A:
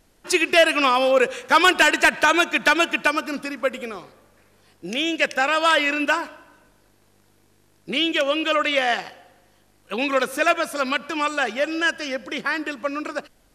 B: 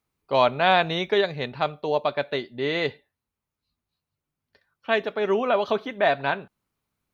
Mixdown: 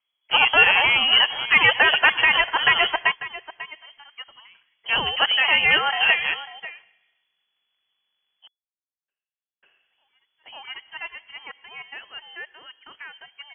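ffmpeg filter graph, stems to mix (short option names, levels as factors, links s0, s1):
-filter_complex "[0:a]volume=1,asplit=3[s0][s1][s2];[s0]atrim=end=7.93,asetpts=PTS-STARTPTS,afade=t=out:st=7.926:d=0.004:c=hsin[s3];[s1]atrim=start=7.93:end=9.08,asetpts=PTS-STARTPTS,volume=0[s4];[s2]atrim=start=9.08,asetpts=PTS-STARTPTS,afade=t=in:d=0.004:c=hsin[s5];[s3][s4][s5]concat=n=3:v=0:a=1,asplit=2[s6][s7];[s7]volume=0.178[s8];[1:a]lowshelf=f=310:g=9.5,volume=0.891,asplit=2[s9][s10];[s10]apad=whole_len=597492[s11];[s6][s11]sidechaingate=range=0.00501:threshold=0.00224:ratio=16:detection=peak[s12];[s8]aecho=0:1:545:1[s13];[s12][s9][s13]amix=inputs=3:normalize=0,equalizer=f=170:t=o:w=2.4:g=-6.5,lowpass=f=2900:t=q:w=0.5098,lowpass=f=2900:t=q:w=0.6013,lowpass=f=2900:t=q:w=0.9,lowpass=f=2900:t=q:w=2.563,afreqshift=-3400"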